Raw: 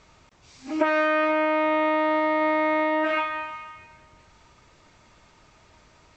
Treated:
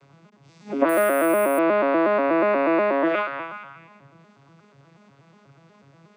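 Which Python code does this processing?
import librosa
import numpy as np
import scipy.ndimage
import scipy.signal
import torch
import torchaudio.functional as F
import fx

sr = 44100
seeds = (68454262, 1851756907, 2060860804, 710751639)

y = fx.vocoder_arp(x, sr, chord='minor triad', root=49, every_ms=121)
y = fx.resample_bad(y, sr, factor=4, down='none', up='hold', at=(0.89, 1.59))
y = y * 10.0 ** (3.5 / 20.0)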